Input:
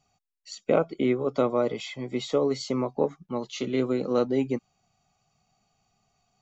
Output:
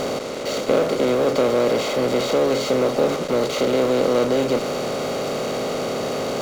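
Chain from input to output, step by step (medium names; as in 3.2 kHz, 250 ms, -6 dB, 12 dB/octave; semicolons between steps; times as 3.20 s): spectral levelling over time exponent 0.2; peaking EQ 520 Hz +4.5 dB 0.44 oct; in parallel at -9 dB: fuzz box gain 34 dB, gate -36 dBFS; on the sum: trim -5 dB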